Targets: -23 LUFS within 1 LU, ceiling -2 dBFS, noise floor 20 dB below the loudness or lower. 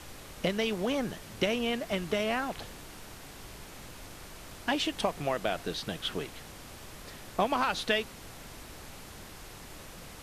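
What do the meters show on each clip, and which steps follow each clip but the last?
noise floor -48 dBFS; noise floor target -52 dBFS; loudness -32.0 LUFS; peak level -13.0 dBFS; loudness target -23.0 LUFS
-> noise print and reduce 6 dB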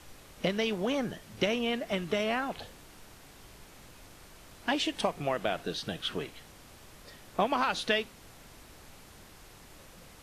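noise floor -54 dBFS; loudness -32.0 LUFS; peak level -13.0 dBFS; loudness target -23.0 LUFS
-> trim +9 dB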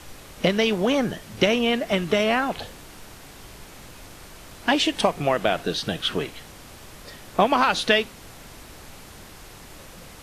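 loudness -23.0 LUFS; peak level -4.0 dBFS; noise floor -45 dBFS

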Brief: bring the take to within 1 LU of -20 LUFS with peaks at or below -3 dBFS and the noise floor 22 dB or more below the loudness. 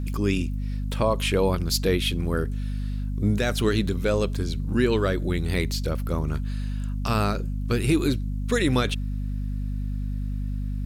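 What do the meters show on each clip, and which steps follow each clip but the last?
hum 50 Hz; highest harmonic 250 Hz; hum level -25 dBFS; loudness -26.0 LUFS; peak level -10.0 dBFS; loudness target -20.0 LUFS
-> hum notches 50/100/150/200/250 Hz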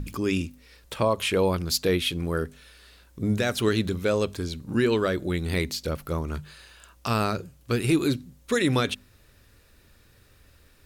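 hum not found; loudness -26.5 LUFS; peak level -10.5 dBFS; loudness target -20.0 LUFS
-> trim +6.5 dB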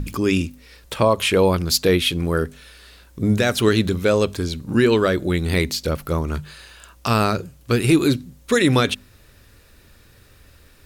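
loudness -20.0 LUFS; peak level -4.0 dBFS; noise floor -51 dBFS

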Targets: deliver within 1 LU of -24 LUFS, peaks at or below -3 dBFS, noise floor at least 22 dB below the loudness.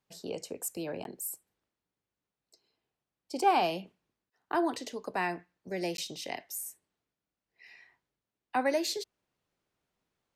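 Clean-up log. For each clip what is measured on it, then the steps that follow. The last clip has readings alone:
dropouts 2; longest dropout 12 ms; loudness -33.5 LUFS; peak level -14.0 dBFS; loudness target -24.0 LUFS
-> interpolate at 1.04/5.97 s, 12 ms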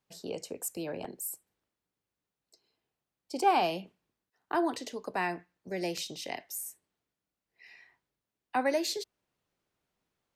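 dropouts 0; loudness -33.5 LUFS; peak level -14.0 dBFS; loudness target -24.0 LUFS
-> trim +9.5 dB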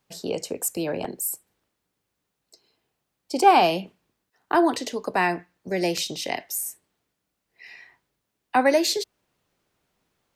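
loudness -24.0 LUFS; peak level -4.5 dBFS; noise floor -80 dBFS

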